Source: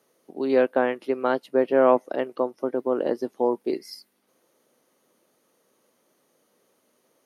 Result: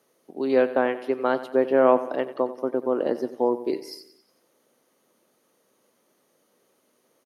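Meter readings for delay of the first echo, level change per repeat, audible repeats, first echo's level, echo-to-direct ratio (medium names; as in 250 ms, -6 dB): 91 ms, -6.0 dB, 4, -14.5 dB, -13.0 dB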